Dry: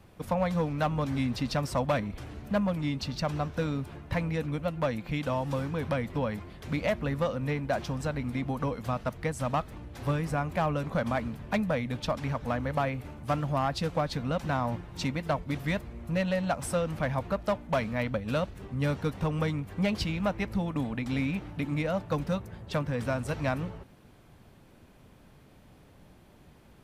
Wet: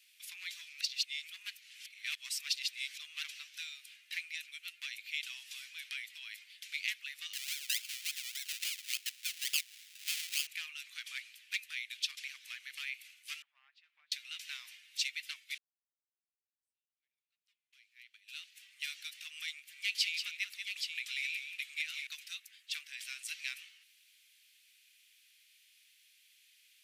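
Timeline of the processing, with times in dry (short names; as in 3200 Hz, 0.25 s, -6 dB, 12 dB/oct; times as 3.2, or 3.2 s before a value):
0.81–3.23 reverse
7.33–10.47 decimation with a swept rate 32×, swing 60% 3.5 Hz
13.42–14.12 Butterworth band-pass 390 Hz, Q 0.65
15.58–18.6 fade in exponential
19.53–22.07 tapped delay 0.185/0.824 s -7.5/-6.5 dB
whole clip: steep high-pass 2300 Hz 36 dB/oct; gain +4.5 dB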